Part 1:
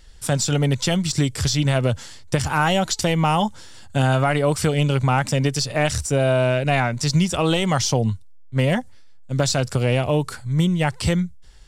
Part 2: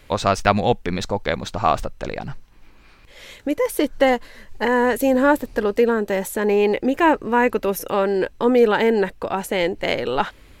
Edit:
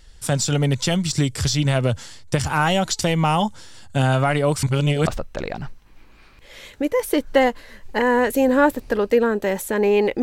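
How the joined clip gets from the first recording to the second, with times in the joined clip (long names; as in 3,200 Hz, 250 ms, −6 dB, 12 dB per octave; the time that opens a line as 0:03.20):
part 1
0:04.63–0:05.07: reverse
0:05.07: continue with part 2 from 0:01.73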